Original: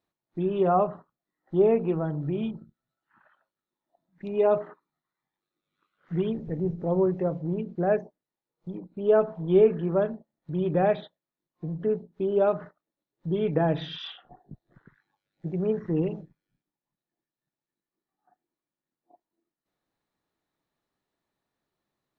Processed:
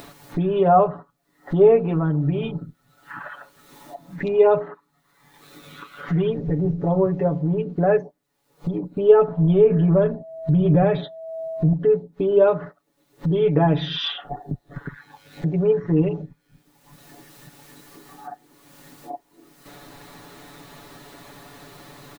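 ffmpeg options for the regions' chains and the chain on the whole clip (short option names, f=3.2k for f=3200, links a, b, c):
-filter_complex "[0:a]asettb=1/sr,asplit=3[a][b][c];[a]atrim=end=9.284[d];[b]atrim=start=9.28:end=11.73,asetpts=PTS-STARTPTS,afade=t=in:d=0.004:c=qsin,afade=t=out:st=2.446:d=0.004:c=qsin,lowshelf=f=220:g=11.5,acompressor=threshold=-19dB:ratio=4:attack=3.2:release=140:knee=1:detection=peak,aeval=exprs='val(0)+0.02*sin(2*PI*650*n/s)':c=same[e];[c]atrim=start=11.726[f];[d][e]acrossfade=d=0.004:c1=hsin:c2=qsin[g];[g][f]acrossfade=d=0.004:c1=qsin:c2=hsin,aecho=1:1:7:0.94,acompressor=mode=upward:threshold=-21dB:ratio=2.5,volume=3.5dB"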